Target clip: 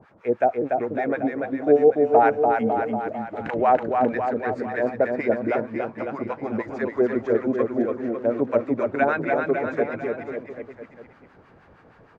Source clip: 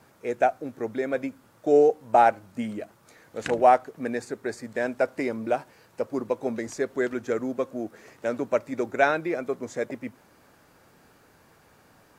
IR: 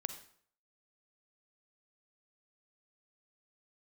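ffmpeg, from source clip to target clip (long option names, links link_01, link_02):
-filter_complex "[0:a]lowpass=2000,asplit=2[link_01][link_02];[link_02]alimiter=limit=-17dB:level=0:latency=1:release=122,volume=-1dB[link_03];[link_01][link_03]amix=inputs=2:normalize=0,acrossover=split=830[link_04][link_05];[link_04]aeval=exprs='val(0)*(1-1/2+1/2*cos(2*PI*6.4*n/s))':channel_layout=same[link_06];[link_05]aeval=exprs='val(0)*(1-1/2-1/2*cos(2*PI*6.4*n/s))':channel_layout=same[link_07];[link_06][link_07]amix=inputs=2:normalize=0,aecho=1:1:290|551|785.9|997.3|1188:0.631|0.398|0.251|0.158|0.1,volume=3dB"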